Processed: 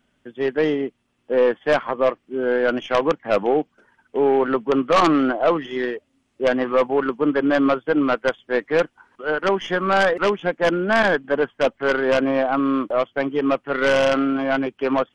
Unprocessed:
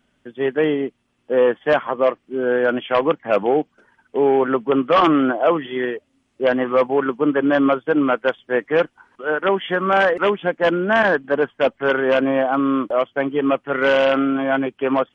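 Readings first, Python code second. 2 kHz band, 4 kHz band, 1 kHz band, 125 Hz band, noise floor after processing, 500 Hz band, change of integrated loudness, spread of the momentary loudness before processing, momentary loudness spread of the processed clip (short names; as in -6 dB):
-1.5 dB, -0.5 dB, -1.5 dB, -1.0 dB, -69 dBFS, -1.5 dB, -1.5 dB, 7 LU, 7 LU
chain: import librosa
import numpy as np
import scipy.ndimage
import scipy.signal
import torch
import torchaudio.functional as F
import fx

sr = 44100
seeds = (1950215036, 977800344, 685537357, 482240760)

y = fx.tracing_dist(x, sr, depth_ms=0.086)
y = y * librosa.db_to_amplitude(-1.5)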